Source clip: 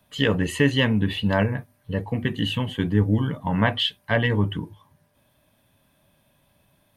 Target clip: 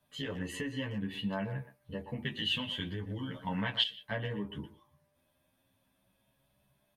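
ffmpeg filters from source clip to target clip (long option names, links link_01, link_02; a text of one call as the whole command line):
ffmpeg -i in.wav -filter_complex "[0:a]asplit=2[link_01][link_02];[link_02]adelay=15,volume=-7dB[link_03];[link_01][link_03]amix=inputs=2:normalize=0,asplit=2[link_04][link_05];[link_05]adelay=120,highpass=300,lowpass=3400,asoftclip=type=hard:threshold=-11.5dB,volume=-13dB[link_06];[link_04][link_06]amix=inputs=2:normalize=0,acompressor=threshold=-22dB:ratio=6,asettb=1/sr,asplit=3[link_07][link_08][link_09];[link_07]atrim=end=0.674[link_10];[link_08]atrim=start=0.67:end=1.13,asetpts=PTS-STARTPTS,afade=type=in:duration=0.004:curve=qsin,afade=type=out:start_time=0.456:duration=0.004:curve=qsin,bandreject=frequency=3700:width=7.1[link_11];[link_09]atrim=start=1.126[link_12];[link_10][link_11]acrossfade=duration=0.004:curve1=hsin:curve2=qsin[link_13];[link_13][link_12]acrossfade=duration=0.004:curve1=qsin:curve2=hsin,asettb=1/sr,asplit=3[link_14][link_15][link_16];[link_14]atrim=end=2.254[link_17];[link_15]atrim=start=2.25:end=3.83,asetpts=PTS-STARTPTS,afade=type=in:duration=0.004:curve=qsin,afade=type=out:start_time=1.576:duration=0.004:curve=qsin,equalizer=frequency=3500:width=0.73:gain=11[link_18];[link_16]atrim=start=3.826[link_19];[link_17][link_18]acrossfade=duration=0.004:curve1=hsin:curve2=qsin[link_20];[link_20][link_19]acrossfade=duration=0.004:curve1=qsin:curve2=hsin,asplit=2[link_21][link_22];[link_22]adelay=9.5,afreqshift=0.39[link_23];[link_21][link_23]amix=inputs=2:normalize=1,volume=-8dB" out.wav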